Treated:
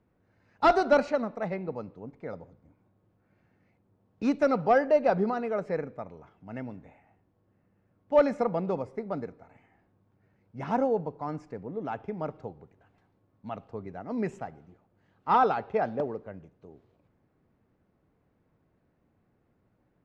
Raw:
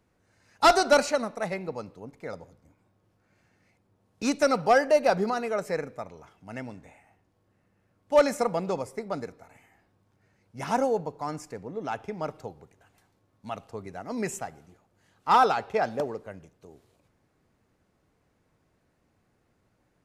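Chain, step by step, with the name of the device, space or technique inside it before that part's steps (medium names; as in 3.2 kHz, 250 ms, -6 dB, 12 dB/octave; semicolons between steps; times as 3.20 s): phone in a pocket (low-pass 3.9 kHz 12 dB/octave; peaking EQ 200 Hz +3.5 dB 2.3 oct; treble shelf 2.3 kHz -8.5 dB); trim -2 dB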